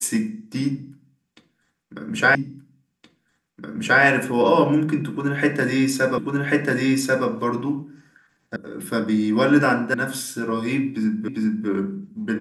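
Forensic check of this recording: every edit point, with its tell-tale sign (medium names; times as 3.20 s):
2.35 s: repeat of the last 1.67 s
6.18 s: repeat of the last 1.09 s
8.56 s: sound stops dead
9.94 s: sound stops dead
11.28 s: repeat of the last 0.4 s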